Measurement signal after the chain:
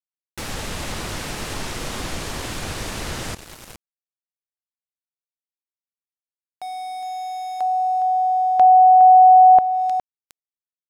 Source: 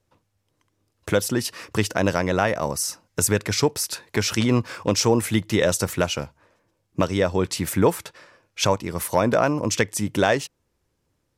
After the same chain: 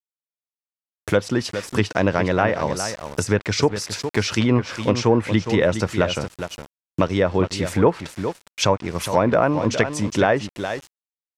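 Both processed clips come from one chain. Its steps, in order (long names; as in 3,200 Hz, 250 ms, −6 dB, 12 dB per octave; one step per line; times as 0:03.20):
single-tap delay 412 ms −9.5 dB
centre clipping without the shift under −36 dBFS
treble cut that deepens with the level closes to 1,900 Hz, closed at −14 dBFS
level +2 dB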